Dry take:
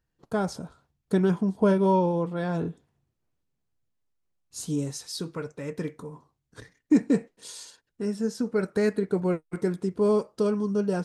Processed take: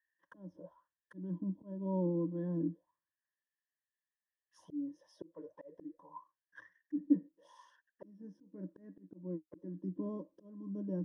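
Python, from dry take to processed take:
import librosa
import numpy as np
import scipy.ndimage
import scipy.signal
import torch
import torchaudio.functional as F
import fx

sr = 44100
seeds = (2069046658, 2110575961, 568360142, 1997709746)

y = fx.low_shelf(x, sr, hz=94.0, db=3.5)
y = fx.auto_wah(y, sr, base_hz=280.0, top_hz=1800.0, q=7.0, full_db=-26.5, direction='down')
y = fx.ripple_eq(y, sr, per_octave=1.2, db=18)
y = fx.auto_swell(y, sr, attack_ms=388.0)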